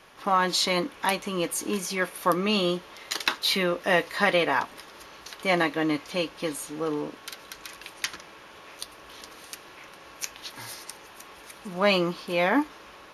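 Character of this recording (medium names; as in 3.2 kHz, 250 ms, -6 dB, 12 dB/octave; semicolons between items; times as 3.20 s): noise floor -48 dBFS; spectral tilt -3.5 dB/octave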